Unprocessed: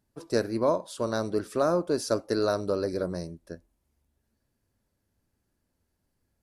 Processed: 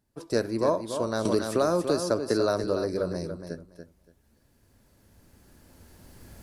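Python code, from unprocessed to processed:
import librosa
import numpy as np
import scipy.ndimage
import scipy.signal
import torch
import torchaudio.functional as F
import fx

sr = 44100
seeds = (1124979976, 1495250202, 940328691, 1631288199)

y = fx.recorder_agc(x, sr, target_db=-19.5, rise_db_per_s=8.7, max_gain_db=30)
y = fx.echo_feedback(y, sr, ms=285, feedback_pct=18, wet_db=-8.5)
y = fx.band_squash(y, sr, depth_pct=100, at=(1.25, 2.64))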